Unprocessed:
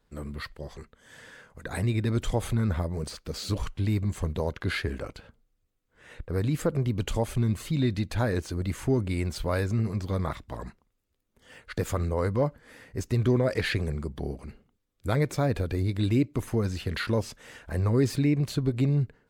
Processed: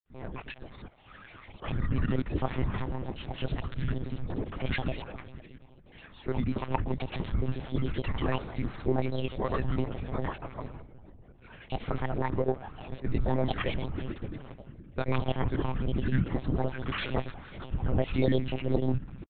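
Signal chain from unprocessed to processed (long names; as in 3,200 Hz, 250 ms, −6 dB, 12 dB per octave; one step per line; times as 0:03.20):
parametric band 2,600 Hz +3 dB 0.55 octaves
on a send: echo with a time of its own for lows and highs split 390 Hz, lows 456 ms, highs 202 ms, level −14.5 dB
on the sum: granular cloud, pitch spread up and down by 12 semitones
one-pitch LPC vocoder at 8 kHz 130 Hz
level −1 dB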